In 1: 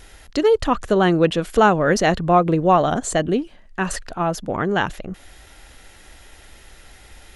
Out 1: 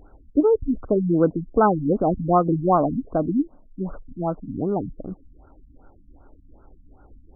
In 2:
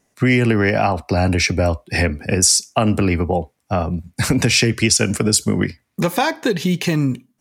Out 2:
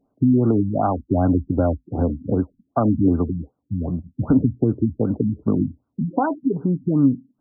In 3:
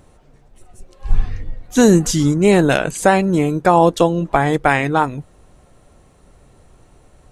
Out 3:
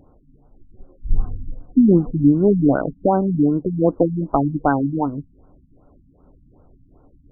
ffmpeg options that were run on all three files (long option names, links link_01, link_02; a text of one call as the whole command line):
ffmpeg -i in.wav -af "aexciter=amount=8.8:drive=8.2:freq=2700,equalizer=frequency=280:width_type=o:width=0.31:gain=9,afftfilt=real='re*lt(b*sr/1024,260*pow(1600/260,0.5+0.5*sin(2*PI*2.6*pts/sr)))':imag='im*lt(b*sr/1024,260*pow(1600/260,0.5+0.5*sin(2*PI*2.6*pts/sr)))':win_size=1024:overlap=0.75,volume=-3dB" out.wav